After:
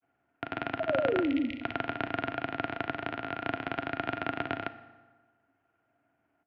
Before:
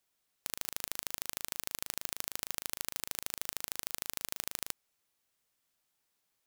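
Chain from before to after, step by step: local Wiener filter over 9 samples; spectral selection erased 1.27–1.68 s, 320–2100 Hz; small resonant body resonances 320/480/880/1600 Hz, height 17 dB, ringing for 40 ms; painted sound fall, 0.88–1.48 s, 410–870 Hz -35 dBFS; granulator, pitch spread up and down by 0 st; FDN reverb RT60 1.4 s, low-frequency decay 1.05×, high-frequency decay 0.7×, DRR 11.5 dB; mistuned SSB -200 Hz 370–3100 Hz; trim +8 dB

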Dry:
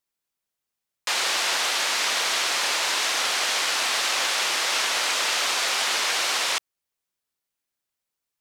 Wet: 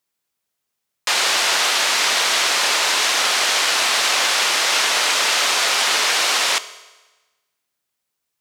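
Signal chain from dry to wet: high-pass 61 Hz; on a send: reverberation RT60 1.2 s, pre-delay 4 ms, DRR 13 dB; on the sum: trim +6 dB

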